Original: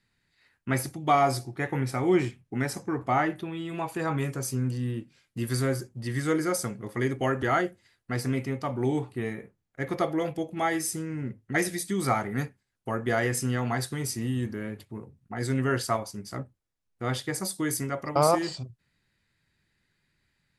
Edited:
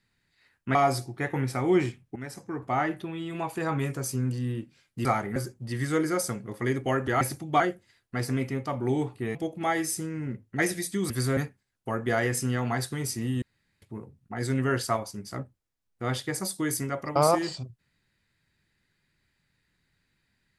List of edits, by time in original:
0.75–1.14 move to 7.56
2.55–3.76 fade in equal-power, from -12.5 dB
5.44–5.71 swap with 12.06–12.37
9.31–10.31 cut
14.42–14.82 room tone

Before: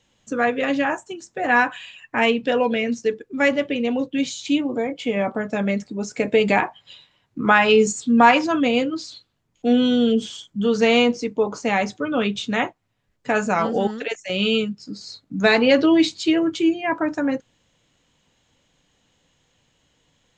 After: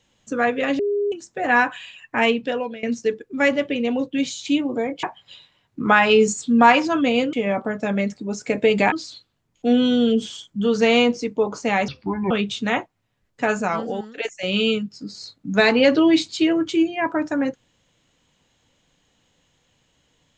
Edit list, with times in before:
0.79–1.12 bleep 408 Hz -18.5 dBFS
2.3–2.83 fade out, to -19.5 dB
5.03–6.62 move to 8.92
11.88–12.17 speed 68%
13.31–14.04 fade out, to -12 dB

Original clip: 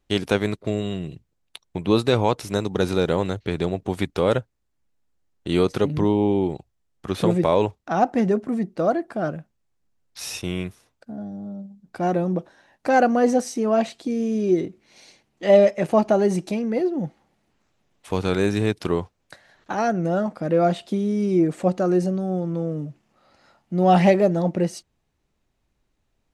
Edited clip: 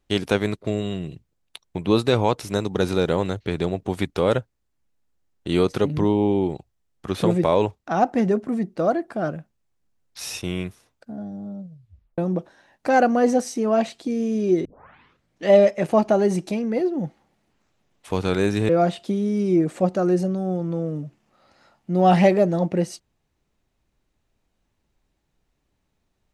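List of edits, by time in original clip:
11.61 tape stop 0.57 s
14.65 tape start 0.83 s
18.69–20.52 cut

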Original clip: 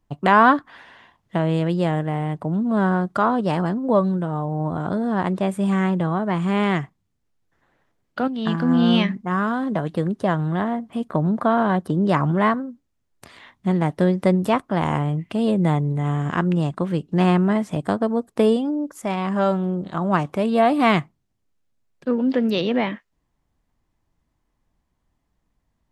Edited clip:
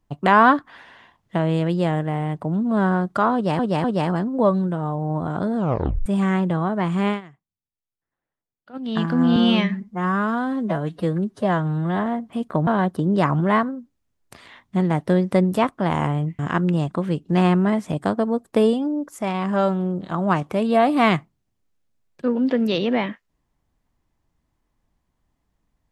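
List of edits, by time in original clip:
3.34–3.59 loop, 3 plays
5.06 tape stop 0.50 s
6.58–8.36 dip -21.5 dB, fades 0.13 s
8.86–10.66 stretch 1.5×
11.27–11.58 cut
15.3–16.22 cut

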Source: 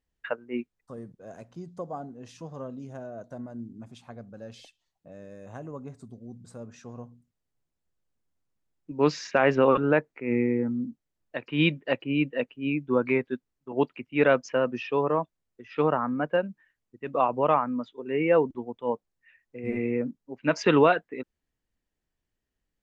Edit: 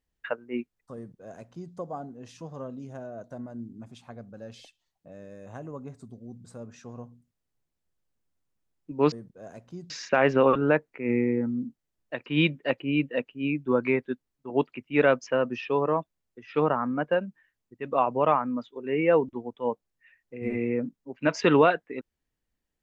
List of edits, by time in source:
0.96–1.74 copy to 9.12

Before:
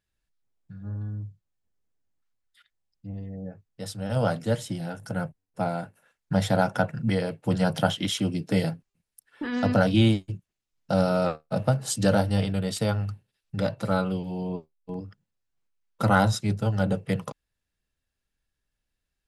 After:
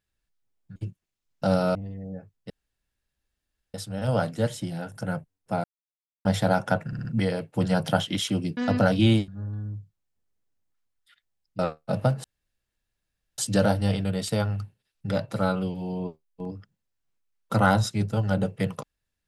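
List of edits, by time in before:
0.76–3.07 swap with 10.23–11.22
3.82 insert room tone 1.24 s
5.72–6.33 mute
6.95 stutter 0.06 s, 4 plays
8.47–9.52 cut
11.87 insert room tone 1.14 s

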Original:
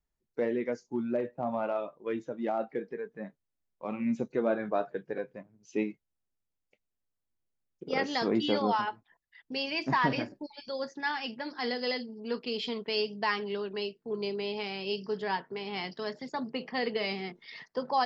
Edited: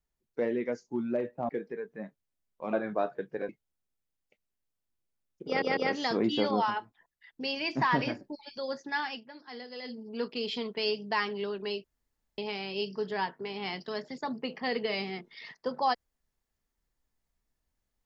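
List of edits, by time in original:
1.49–2.7 cut
3.94–4.49 cut
5.25–5.9 cut
7.88 stutter 0.15 s, 3 plays
11.2–12.05 dip -11 dB, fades 0.12 s
13.95–14.49 room tone

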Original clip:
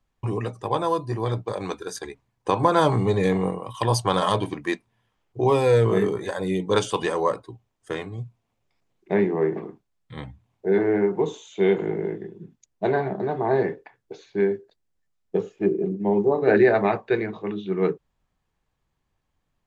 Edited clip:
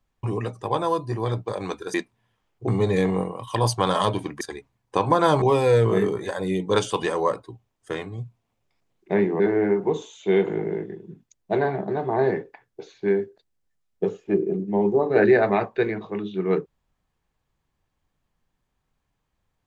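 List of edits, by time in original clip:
1.94–2.95 swap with 4.68–5.42
9.4–10.72 cut

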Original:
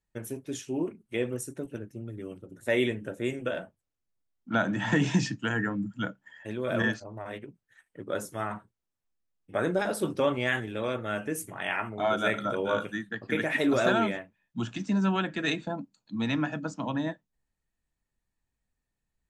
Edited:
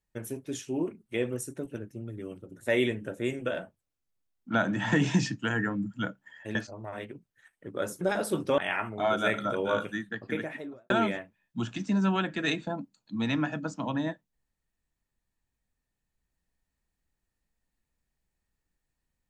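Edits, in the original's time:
6.55–6.88 cut
8.34–9.71 cut
10.28–11.58 cut
13.06–13.9 studio fade out

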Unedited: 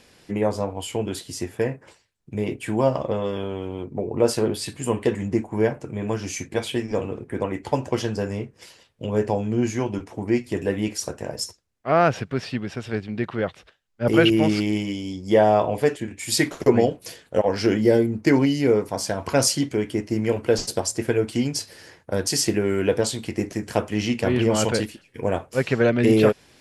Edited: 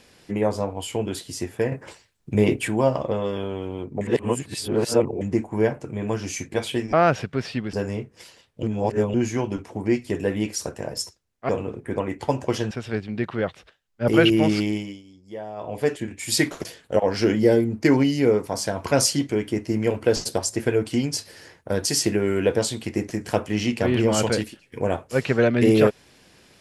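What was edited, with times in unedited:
1.72–2.68 gain +7.5 dB
4.01–5.21 reverse
6.93–8.15 swap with 11.91–12.71
9.05–9.56 reverse
14.63–15.96 dip -18.5 dB, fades 0.40 s
16.65–17.07 cut

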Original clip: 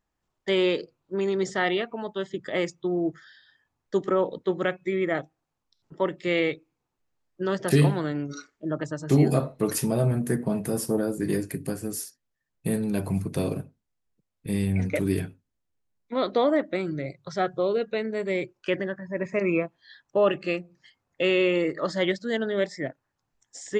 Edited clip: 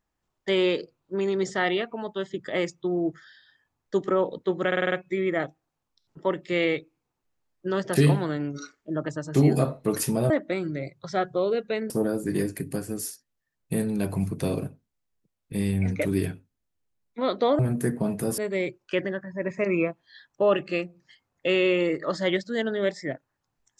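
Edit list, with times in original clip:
4.67 stutter 0.05 s, 6 plays
10.05–10.84 swap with 16.53–18.13

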